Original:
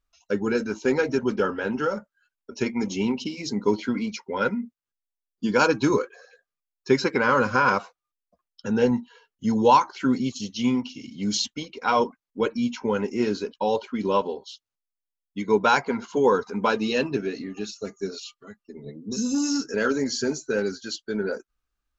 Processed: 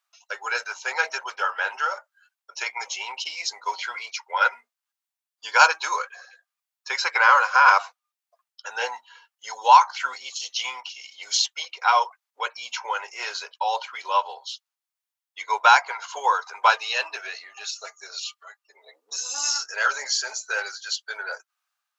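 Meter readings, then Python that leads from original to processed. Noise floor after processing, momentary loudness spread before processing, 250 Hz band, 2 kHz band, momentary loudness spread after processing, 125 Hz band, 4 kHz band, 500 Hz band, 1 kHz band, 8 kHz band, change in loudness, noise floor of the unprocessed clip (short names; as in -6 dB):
under -85 dBFS, 13 LU, under -35 dB, +6.5 dB, 19 LU, under -40 dB, +5.5 dB, -11.5 dB, +5.5 dB, n/a, +1.5 dB, under -85 dBFS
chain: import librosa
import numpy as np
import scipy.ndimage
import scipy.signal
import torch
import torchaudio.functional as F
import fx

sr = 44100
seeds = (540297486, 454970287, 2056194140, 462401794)

y = scipy.signal.sosfilt(scipy.signal.butter(6, 700.0, 'highpass', fs=sr, output='sos'), x)
y = y * (1.0 - 0.3 / 2.0 + 0.3 / 2.0 * np.cos(2.0 * np.pi * 1.8 * (np.arange(len(y)) / sr)))
y = F.gain(torch.from_numpy(y), 7.5).numpy()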